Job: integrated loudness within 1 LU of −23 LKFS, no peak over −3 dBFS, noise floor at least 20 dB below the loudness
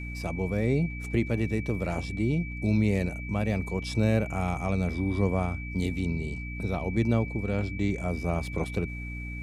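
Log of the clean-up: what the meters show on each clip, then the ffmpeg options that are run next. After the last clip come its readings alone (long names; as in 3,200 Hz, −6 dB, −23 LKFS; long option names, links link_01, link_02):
mains hum 60 Hz; hum harmonics up to 300 Hz; level of the hum −34 dBFS; interfering tone 2,300 Hz; level of the tone −40 dBFS; integrated loudness −29.0 LKFS; sample peak −11.5 dBFS; target loudness −23.0 LKFS
→ -af "bandreject=frequency=60:width_type=h:width=4,bandreject=frequency=120:width_type=h:width=4,bandreject=frequency=180:width_type=h:width=4,bandreject=frequency=240:width_type=h:width=4,bandreject=frequency=300:width_type=h:width=4"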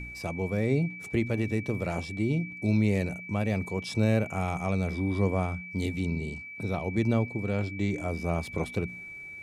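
mains hum none found; interfering tone 2,300 Hz; level of the tone −40 dBFS
→ -af "bandreject=frequency=2300:width=30"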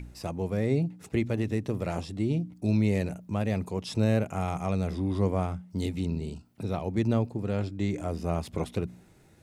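interfering tone none found; integrated loudness −30.0 LKFS; sample peak −12.5 dBFS; target loudness −23.0 LKFS
→ -af "volume=7dB"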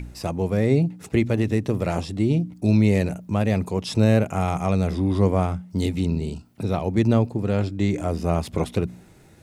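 integrated loudness −23.0 LKFS; sample peak −5.5 dBFS; background noise floor −51 dBFS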